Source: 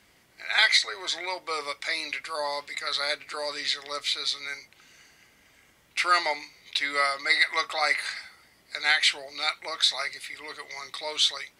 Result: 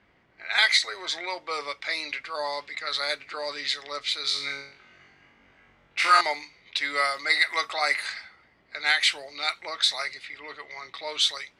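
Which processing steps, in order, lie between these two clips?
6.84–7.4 crackle 340/s -44 dBFS; low-pass opened by the level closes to 2100 Hz, open at -22 dBFS; 4.22–6.21 flutter echo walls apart 3.7 m, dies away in 0.5 s

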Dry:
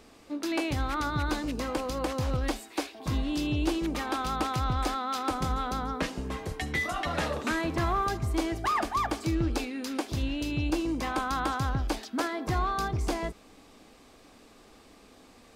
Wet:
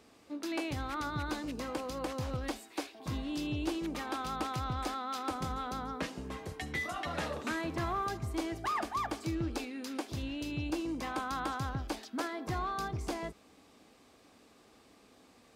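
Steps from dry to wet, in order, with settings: HPF 68 Hz; gain -6 dB

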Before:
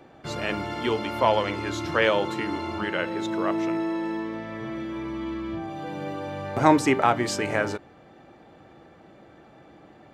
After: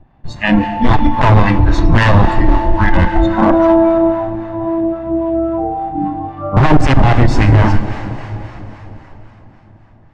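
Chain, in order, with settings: minimum comb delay 1.1 ms; spectral noise reduction 23 dB; in parallel at -7.5 dB: sine folder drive 11 dB, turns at -3.5 dBFS; on the sum: RIAA curve playback; hard clip -10.5 dBFS, distortion -5 dB; tape echo 0.163 s, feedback 84%, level -20.5 dB, low-pass 5100 Hz; plate-style reverb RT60 4.1 s, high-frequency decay 0.95×, DRR 11 dB; harmonic tremolo 3.7 Hz, depth 50%, crossover 800 Hz; air absorption 79 m; maximiser +11.5 dB; gain -1 dB

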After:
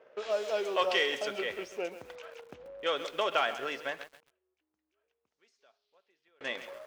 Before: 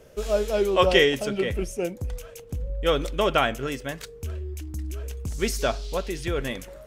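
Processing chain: low-pass opened by the level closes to 1800 Hz, open at -17 dBFS; sample leveller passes 1; compressor 2:1, threshold -30 dBFS, peak gain reduction 10.5 dB; 4.03–6.41 flipped gate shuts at -35 dBFS, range -34 dB; BPF 590–6100 Hz; lo-fi delay 0.134 s, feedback 35%, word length 8-bit, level -12.5 dB

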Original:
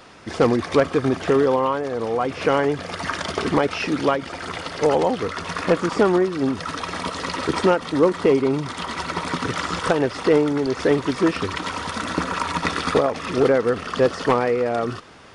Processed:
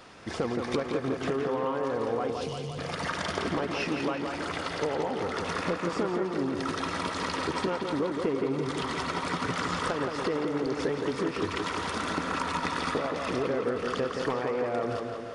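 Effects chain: 2.3–2.78 inverse Chebyshev band-stop 380–1300 Hz, stop band 60 dB; compressor, threshold -23 dBFS, peak gain reduction 11.5 dB; tape echo 0.17 s, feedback 71%, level -3.5 dB, low-pass 3100 Hz; gain -4.5 dB

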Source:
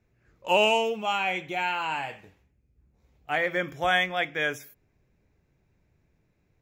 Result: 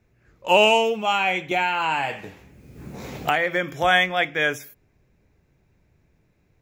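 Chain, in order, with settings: 1.51–3.83 three-band squash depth 100%; gain +5.5 dB

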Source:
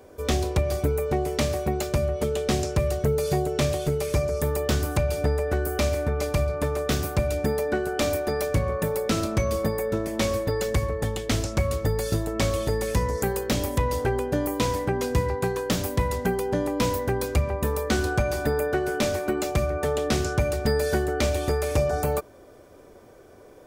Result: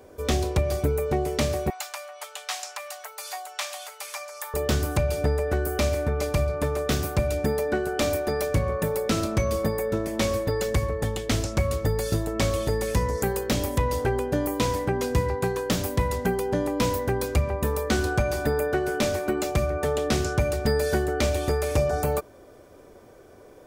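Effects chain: 1.7–4.54 steep high-pass 770 Hz 36 dB/oct

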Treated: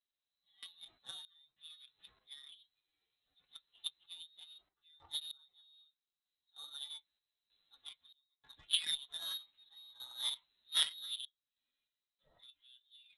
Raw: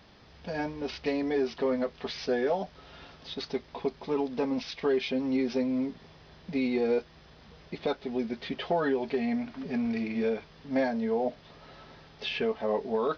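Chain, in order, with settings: inharmonic rescaling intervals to 111%; random-step tremolo 3.2 Hz, depth 95%; inverted band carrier 4000 Hz; low shelf 180 Hz +3.5 dB; added harmonics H 3 -10 dB, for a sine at -16.5 dBFS; gain +2.5 dB

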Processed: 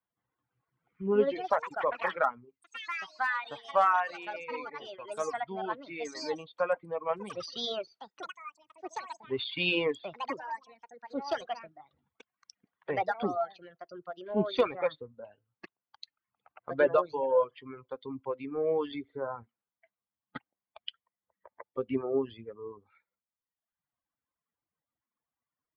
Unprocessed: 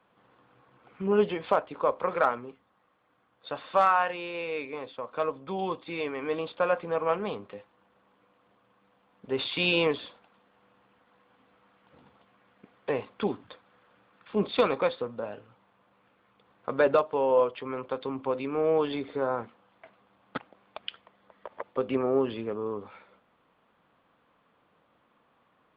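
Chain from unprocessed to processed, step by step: per-bin expansion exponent 1.5; reverb removal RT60 1.2 s; echoes that change speed 0.389 s, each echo +5 st, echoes 3, each echo -6 dB

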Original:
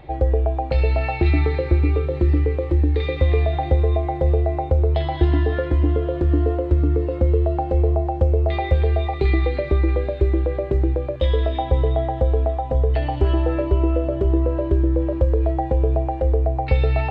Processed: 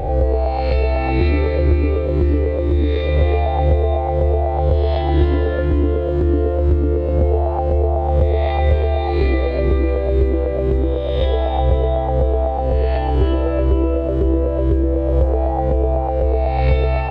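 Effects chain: spectral swells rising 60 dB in 1.16 s

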